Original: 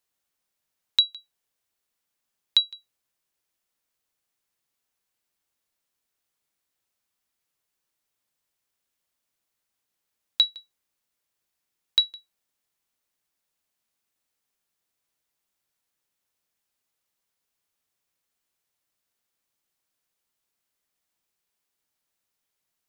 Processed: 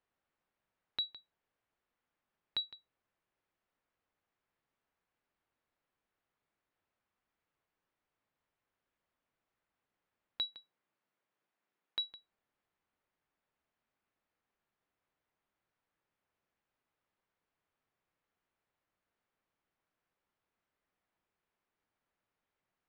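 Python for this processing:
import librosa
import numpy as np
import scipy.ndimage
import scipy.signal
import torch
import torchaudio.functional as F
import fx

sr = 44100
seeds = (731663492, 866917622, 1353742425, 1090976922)

y = fx.highpass(x, sr, hz=fx.line((10.5, 110.0), (12.08, 230.0)), slope=12, at=(10.5, 12.08), fade=0.02)
y = 10.0 ** (-18.5 / 20.0) * np.tanh(y / 10.0 ** (-18.5 / 20.0))
y = scipy.signal.sosfilt(scipy.signal.butter(2, 1900.0, 'lowpass', fs=sr, output='sos'), y)
y = y * 10.0 ** (2.0 / 20.0)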